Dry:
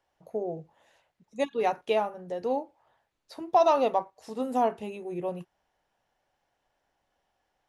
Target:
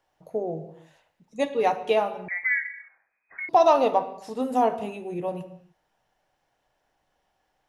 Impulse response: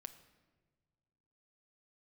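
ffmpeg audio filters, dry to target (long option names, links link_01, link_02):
-filter_complex "[1:a]atrim=start_sample=2205,afade=type=out:start_time=0.36:duration=0.01,atrim=end_sample=16317[link_01];[0:a][link_01]afir=irnorm=-1:irlink=0,asettb=1/sr,asplit=3[link_02][link_03][link_04];[link_02]atrim=end=2.284[link_05];[link_03]atrim=start=2.28:end=3.49,asetpts=PTS-STARTPTS,afade=type=in:duration=0.004:curve=qsin,afade=type=out:start_time=1.206:duration=0.004:curve=qsin,lowpass=frequency=2100:width_type=q:width=0.5098,lowpass=frequency=2100:width_type=q:width=0.6013,lowpass=frequency=2100:width_type=q:width=0.9,lowpass=frequency=2100:width_type=q:width=2.563,afreqshift=-2500[link_06];[link_04]atrim=start=3.486[link_07];[link_05][link_06]acrossfade=duration=0.004:curve1=hsin:curve2=qsin[link_08];[link_08][link_07]acrossfade=duration=0.004:curve1=qsin:curve2=hsin,volume=9dB"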